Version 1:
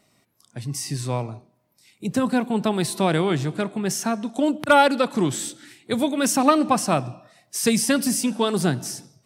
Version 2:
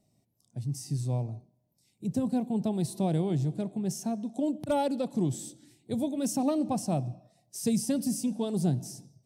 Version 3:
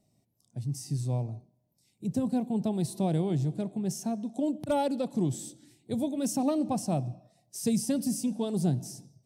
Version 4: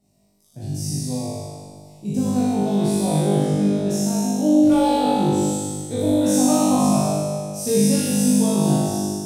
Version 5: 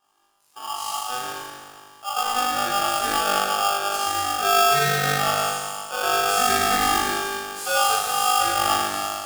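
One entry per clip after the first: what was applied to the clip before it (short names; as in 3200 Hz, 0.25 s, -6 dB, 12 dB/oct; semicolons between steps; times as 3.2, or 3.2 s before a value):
EQ curve 130 Hz 0 dB, 440 Hz -9 dB, 740 Hz -8 dB, 1300 Hz -26 dB, 6000 Hz -10 dB; gain -1.5 dB
nothing audible
spectral trails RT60 1.63 s; on a send: flutter echo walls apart 3.4 m, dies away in 1.5 s
modulation noise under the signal 18 dB; polarity switched at an audio rate 1000 Hz; gain -3.5 dB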